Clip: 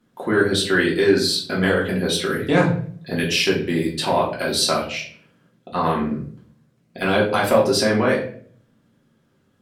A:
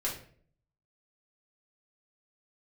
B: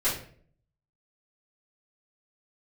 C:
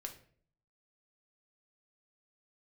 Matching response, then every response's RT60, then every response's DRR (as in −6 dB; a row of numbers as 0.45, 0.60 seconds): A; 0.50, 0.50, 0.50 seconds; −5.5, −13.5, 3.0 decibels